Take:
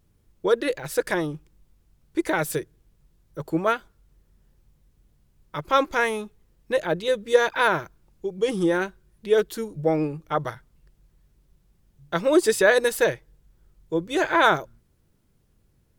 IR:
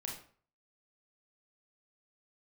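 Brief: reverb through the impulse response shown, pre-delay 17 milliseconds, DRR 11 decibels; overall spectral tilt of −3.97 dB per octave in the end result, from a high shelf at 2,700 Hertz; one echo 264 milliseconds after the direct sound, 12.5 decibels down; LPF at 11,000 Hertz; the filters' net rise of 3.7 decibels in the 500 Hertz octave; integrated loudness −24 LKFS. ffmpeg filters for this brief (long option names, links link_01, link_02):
-filter_complex "[0:a]lowpass=11000,equalizer=frequency=500:width_type=o:gain=4,highshelf=frequency=2700:gain=5,aecho=1:1:264:0.237,asplit=2[link_01][link_02];[1:a]atrim=start_sample=2205,adelay=17[link_03];[link_02][link_03]afir=irnorm=-1:irlink=0,volume=-10dB[link_04];[link_01][link_04]amix=inputs=2:normalize=0,volume=-3dB"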